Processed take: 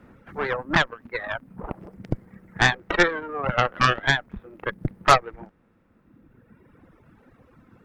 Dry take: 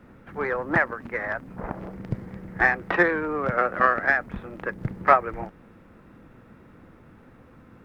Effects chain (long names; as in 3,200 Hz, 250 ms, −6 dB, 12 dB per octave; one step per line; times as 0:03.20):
harmonic generator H 8 −15 dB, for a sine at −1.5 dBFS
reverb reduction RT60 1.9 s